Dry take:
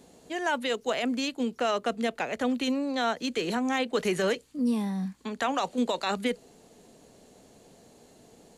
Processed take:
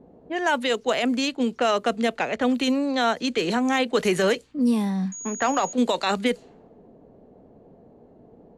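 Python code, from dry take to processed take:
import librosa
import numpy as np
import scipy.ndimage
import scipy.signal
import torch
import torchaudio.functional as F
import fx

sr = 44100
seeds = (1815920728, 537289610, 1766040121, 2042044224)

y = fx.env_lowpass(x, sr, base_hz=650.0, full_db=-24.5)
y = fx.pwm(y, sr, carrier_hz=6700.0, at=(5.12, 5.73))
y = y * librosa.db_to_amplitude(5.5)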